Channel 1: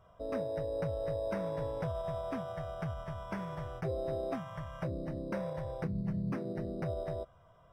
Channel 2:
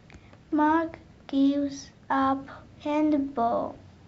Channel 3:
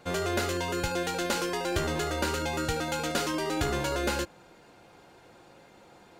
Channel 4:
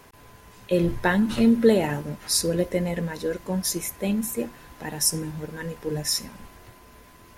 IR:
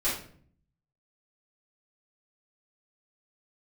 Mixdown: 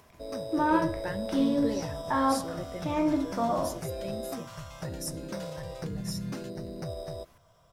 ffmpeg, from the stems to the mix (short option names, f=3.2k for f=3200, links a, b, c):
-filter_complex "[0:a]highshelf=f=3.4k:t=q:w=1.5:g=12.5,volume=-0.5dB[a];[1:a]dynaudnorm=f=270:g=3:m=12dB,volume=-16dB,asplit=2[b][c];[c]volume=-10.5dB[d];[2:a]highpass=1.2k,adelay=2250,volume=-17dB[e];[3:a]acompressor=mode=upward:threshold=-39dB:ratio=2.5,volume=-15.5dB,asplit=2[f][g];[g]apad=whole_len=372482[h];[e][h]sidechaincompress=threshold=-44dB:ratio=8:attack=5.6:release=206[i];[4:a]atrim=start_sample=2205[j];[d][j]afir=irnorm=-1:irlink=0[k];[a][b][i][f][k]amix=inputs=5:normalize=0"